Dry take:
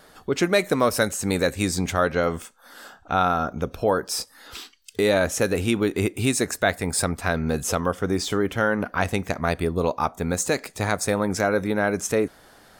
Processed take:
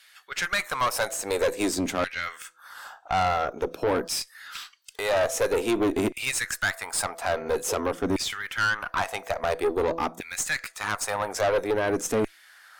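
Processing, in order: de-hum 166.1 Hz, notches 4; LFO high-pass saw down 0.49 Hz 220–2500 Hz; tube stage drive 19 dB, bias 0.45

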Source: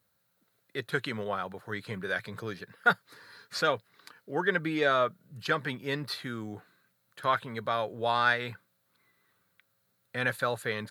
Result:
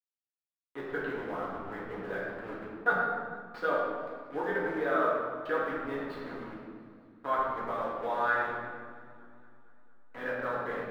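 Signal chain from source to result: level-crossing sampler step -31.5 dBFS; dynamic EQ 2400 Hz, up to -6 dB, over -46 dBFS, Q 1.3; harmonic-percussive split harmonic -5 dB; three-band isolator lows -15 dB, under 210 Hz, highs -24 dB, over 2600 Hz; reverb RT60 1.7 s, pre-delay 3 ms, DRR -7.5 dB; warbling echo 0.229 s, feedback 65%, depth 73 cents, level -21.5 dB; gain -6.5 dB

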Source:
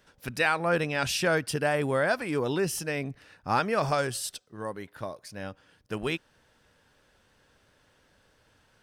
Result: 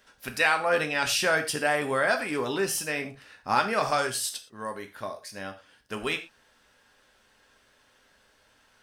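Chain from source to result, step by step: low shelf 490 Hz -9 dB; non-linear reverb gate 0.14 s falling, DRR 5 dB; gain +3 dB

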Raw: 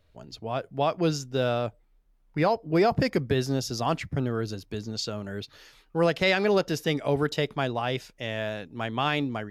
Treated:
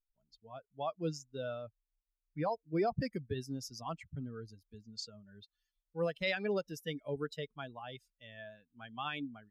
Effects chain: per-bin expansion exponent 2; gain -8 dB

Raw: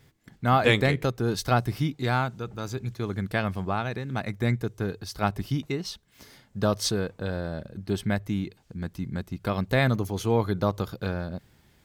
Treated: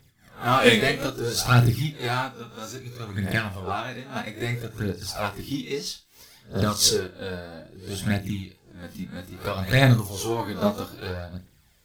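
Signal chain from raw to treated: spectral swells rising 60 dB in 0.37 s; in parallel at -7 dB: hard clip -21 dBFS, distortion -10 dB; on the sum: phaser 0.61 Hz, delay 4.8 ms, feedback 61%; high shelf 3100 Hz +8.5 dB; on a send: flutter echo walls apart 5.6 m, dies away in 0.25 s; on the sum: upward expander 1.5:1, over -28 dBFS; gain -2 dB

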